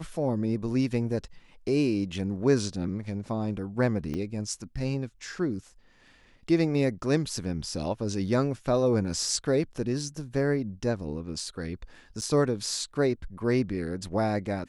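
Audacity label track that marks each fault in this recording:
4.140000	4.140000	pop -22 dBFS
12.210000	12.220000	gap 8.4 ms

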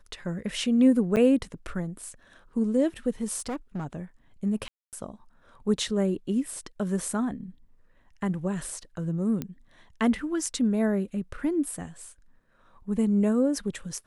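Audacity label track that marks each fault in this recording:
1.160000	1.170000	gap 8.2 ms
3.380000	3.860000	clipped -28 dBFS
4.680000	4.930000	gap 0.248 s
9.420000	9.420000	pop -18 dBFS

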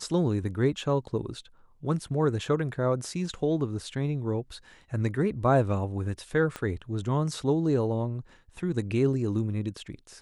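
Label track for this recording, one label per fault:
6.560000	6.560000	pop -19 dBFS

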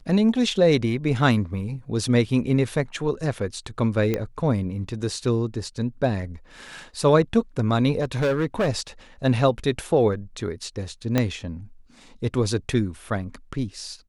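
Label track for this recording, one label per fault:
4.140000	4.140000	pop -11 dBFS
7.990000	8.690000	clipped -18 dBFS
11.180000	11.180000	pop -7 dBFS

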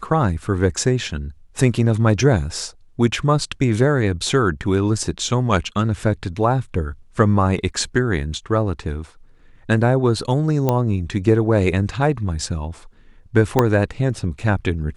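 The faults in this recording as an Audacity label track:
10.690000	10.690000	pop -6 dBFS
13.590000	13.590000	pop -2 dBFS

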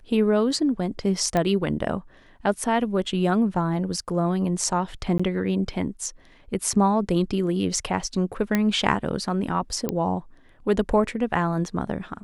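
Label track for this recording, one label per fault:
1.370000	1.370000	pop -11 dBFS
5.180000	5.200000	gap 15 ms
8.550000	8.550000	pop -8 dBFS
9.890000	9.890000	pop -11 dBFS

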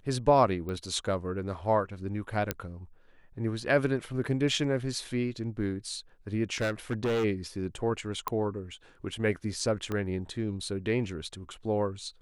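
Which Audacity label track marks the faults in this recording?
0.690000	0.690000	pop -25 dBFS
2.510000	2.510000	pop -12 dBFS
6.550000	7.250000	clipped -25 dBFS
8.280000	8.280000	pop -16 dBFS
9.920000	9.920000	pop -20 dBFS

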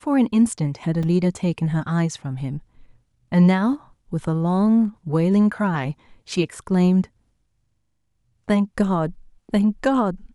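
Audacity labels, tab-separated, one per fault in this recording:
1.030000	1.030000	gap 3.2 ms

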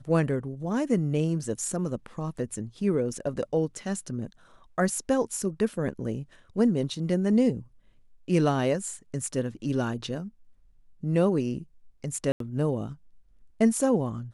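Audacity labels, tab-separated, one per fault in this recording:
12.320000	12.400000	gap 83 ms

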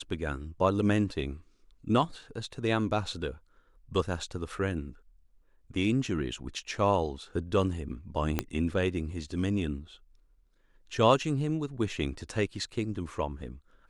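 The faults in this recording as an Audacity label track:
8.390000	8.390000	pop -12 dBFS

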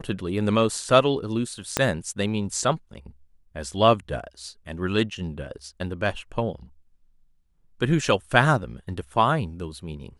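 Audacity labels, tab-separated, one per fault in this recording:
1.770000	1.770000	pop -5 dBFS

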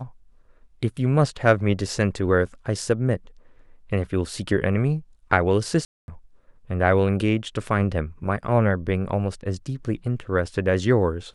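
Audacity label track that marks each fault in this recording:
5.850000	6.080000	gap 0.231 s

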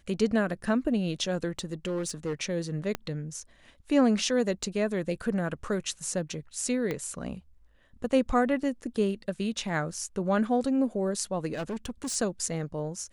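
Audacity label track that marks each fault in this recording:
1.590000	2.330000	clipped -26.5 dBFS
2.950000	2.950000	pop -15 dBFS
4.630000	4.630000	gap 4.2 ms
6.910000	6.910000	pop -18 dBFS
9.940000	9.940000	gap 2.5 ms
11.530000	12.160000	clipped -29.5 dBFS

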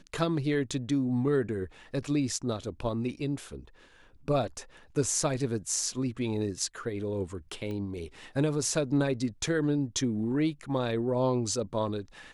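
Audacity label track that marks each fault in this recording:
7.710000	7.710000	pop -27 dBFS

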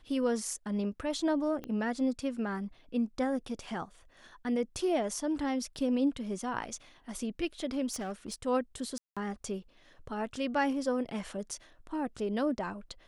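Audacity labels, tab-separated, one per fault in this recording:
1.640000	1.640000	pop -26 dBFS
7.910000	8.340000	clipped -32.5 dBFS
8.980000	9.170000	gap 0.186 s

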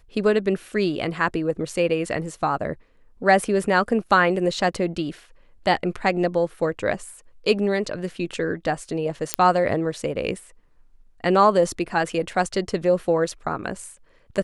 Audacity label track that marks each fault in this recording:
9.340000	9.340000	pop -1 dBFS

